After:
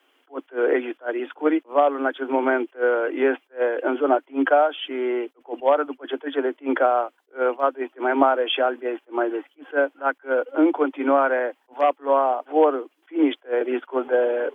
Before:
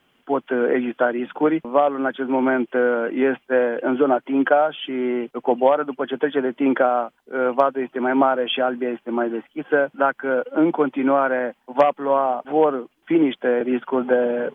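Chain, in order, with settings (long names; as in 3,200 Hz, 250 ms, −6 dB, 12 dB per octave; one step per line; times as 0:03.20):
Butterworth high-pass 270 Hz 96 dB per octave
level that may rise only so fast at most 340 dB per second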